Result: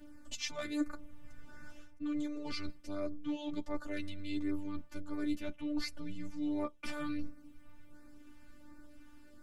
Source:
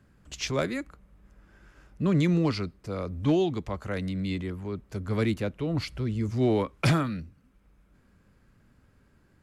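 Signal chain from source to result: reverse; compression 10:1, threshold -39 dBFS, peak gain reduction 20.5 dB; reverse; LFO notch sine 1.4 Hz 370–3200 Hz; robot voice 295 Hz; chorus voices 4, 0.25 Hz, delay 10 ms, depth 3.2 ms; trim +11 dB

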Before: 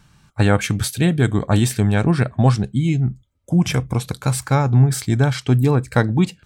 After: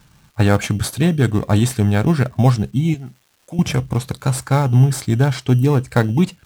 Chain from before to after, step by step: 2.94–3.59 s: high-pass 810 Hz 6 dB/octave; in parallel at -11 dB: sample-and-hold 15×; on the sum: crackle 570 per s -44 dBFS; trim -1 dB

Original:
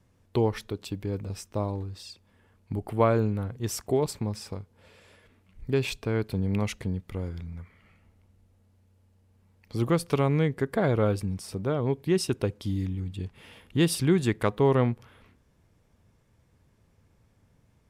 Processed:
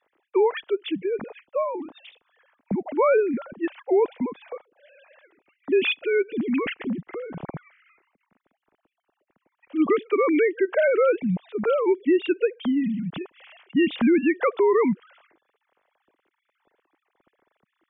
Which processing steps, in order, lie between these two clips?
formants replaced by sine waves; peak limiter -20 dBFS, peak gain reduction 10 dB; dynamic bell 2.6 kHz, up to +4 dB, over -50 dBFS, Q 0.73; trim +7 dB

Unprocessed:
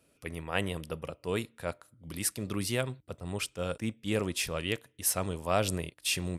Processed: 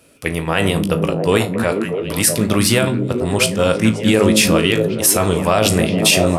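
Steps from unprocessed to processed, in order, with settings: de-hum 52.56 Hz, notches 27; in parallel at -9 dB: crossover distortion -44.5 dBFS; on the sum: bass shelf 62 Hz -6 dB; feedback comb 54 Hz, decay 0.22 s, harmonics all, mix 70%; on a send: repeats whose band climbs or falls 213 ms, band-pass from 180 Hz, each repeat 0.7 oct, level -0.5 dB; on the sum: loudness maximiser +22 dB; trim -1 dB

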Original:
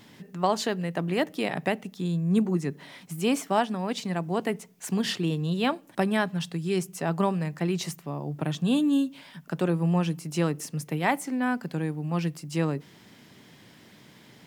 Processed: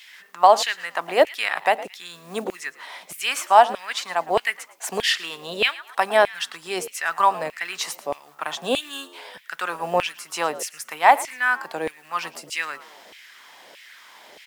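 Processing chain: companded quantiser 8-bit; frequency-shifting echo 111 ms, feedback 32%, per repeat +74 Hz, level -18.5 dB; LFO high-pass saw down 1.6 Hz 520–2500 Hz; trim +6.5 dB

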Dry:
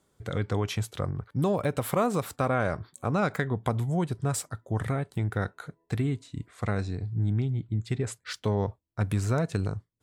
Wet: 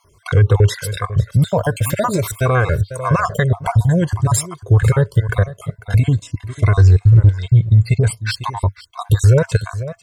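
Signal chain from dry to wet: random holes in the spectrogram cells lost 44%; peaking EQ 99 Hz +6 dB 0.61 oct; comb 1.9 ms, depth 56%; 6.80–7.35 s: waveshaping leveller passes 1; on a send: delay 497 ms -17.5 dB; on the sum: loudness maximiser +19 dB; Shepard-style flanger rising 0.46 Hz

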